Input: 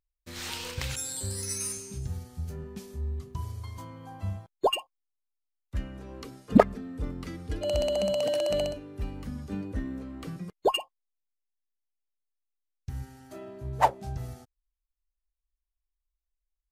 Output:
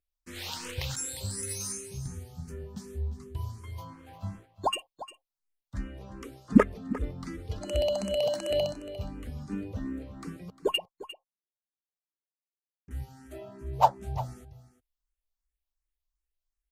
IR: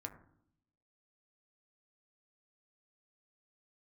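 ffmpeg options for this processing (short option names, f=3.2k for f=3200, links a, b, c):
-filter_complex "[0:a]asettb=1/sr,asplit=3[a][b][c];[a]atrim=end=3.934[d];[b]atrim=start=3.93:end=4.52,asetpts=PTS-STARTPTS,afade=t=in:d=0.004:c=qsin,afade=t=out:st=0.586:d=0.004:c=qsin,aeval=exprs='sgn(val(0))*max(abs(val(0))-0.00299,0)':c=same[e];[c]atrim=start=4.516[f];[d][e]acrossfade=d=0.004:c1=hsin:c2=qsin[g];[g][f]acrossfade=d=0.004:c1=qsin:c2=hsin,asettb=1/sr,asplit=3[h][i][j];[h]atrim=end=10.784[k];[i]atrim=start=10.78:end=12.91,asetpts=PTS-STARTPTS,afade=t=in:d=0.004:c=qsin,afade=t=out:st=2.126:d=0.004:c=qsin,bandpass=f=380:t=q:w=0.83:csg=0[l];[j]atrim=start=12.906[m];[k][l]acrossfade=d=0.004:c1=hsin:c2=qsin[n];[n][m]acrossfade=d=0.004:c1=qsin:c2=hsin,aecho=1:1:352:0.178,asplit=2[o][p];[p]afreqshift=2.7[q];[o][q]amix=inputs=2:normalize=1,volume=1.5dB"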